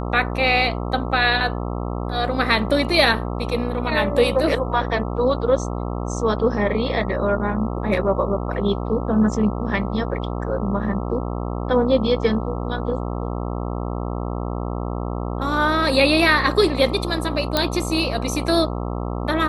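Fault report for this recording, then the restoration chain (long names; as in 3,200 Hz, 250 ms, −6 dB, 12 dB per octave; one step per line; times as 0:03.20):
mains buzz 60 Hz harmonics 22 −26 dBFS
0:17.57: click −4 dBFS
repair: click removal
hum removal 60 Hz, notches 22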